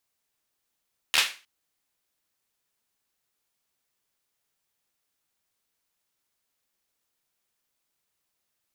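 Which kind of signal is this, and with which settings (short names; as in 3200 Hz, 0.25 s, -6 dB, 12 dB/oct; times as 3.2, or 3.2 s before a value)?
hand clap length 0.31 s, apart 13 ms, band 2500 Hz, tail 0.33 s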